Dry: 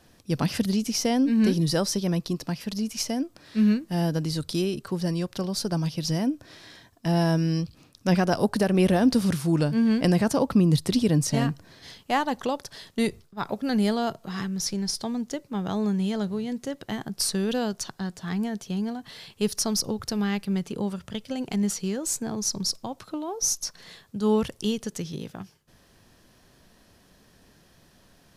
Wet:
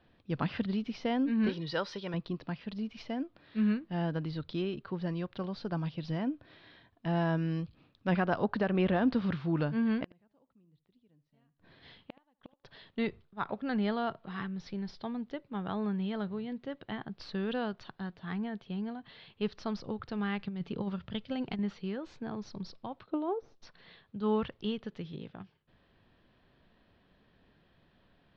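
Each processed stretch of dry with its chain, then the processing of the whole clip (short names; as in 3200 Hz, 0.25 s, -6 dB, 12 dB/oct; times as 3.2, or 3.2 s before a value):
1.49–2.14 tilt +2.5 dB/oct + comb 2.1 ms, depth 32% + careless resampling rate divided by 3×, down filtered, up zero stuff
10.03–12.64 flipped gate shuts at -19 dBFS, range -38 dB + echo 75 ms -17.5 dB
20.39–21.59 tone controls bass +4 dB, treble +7 dB + negative-ratio compressor -25 dBFS, ratio -0.5
23.06–23.62 de-esser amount 100% + bell 420 Hz +10.5 dB 1.5 oct + upward expander, over -41 dBFS
whole clip: steep low-pass 3800 Hz 36 dB/oct; dynamic EQ 1300 Hz, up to +6 dB, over -42 dBFS, Q 1.1; gain -8 dB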